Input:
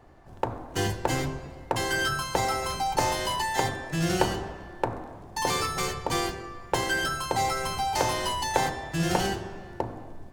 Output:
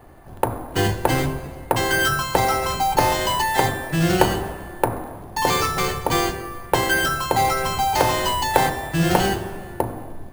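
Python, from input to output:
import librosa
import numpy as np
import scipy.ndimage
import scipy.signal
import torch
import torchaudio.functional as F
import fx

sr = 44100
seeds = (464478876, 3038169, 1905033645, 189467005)

y = np.repeat(scipy.signal.resample_poly(x, 1, 4), 4)[:len(x)]
y = y * 10.0 ** (7.5 / 20.0)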